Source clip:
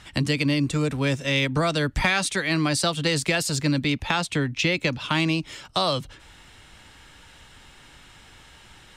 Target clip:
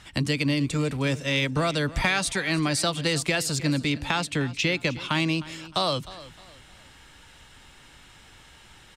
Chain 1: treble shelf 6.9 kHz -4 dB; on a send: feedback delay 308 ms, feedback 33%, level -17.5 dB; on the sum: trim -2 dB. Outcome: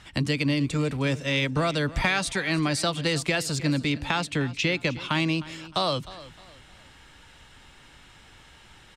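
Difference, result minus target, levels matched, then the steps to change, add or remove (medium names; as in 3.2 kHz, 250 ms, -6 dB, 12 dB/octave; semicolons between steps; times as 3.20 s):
8 kHz band -3.0 dB
change: treble shelf 6.9 kHz +2 dB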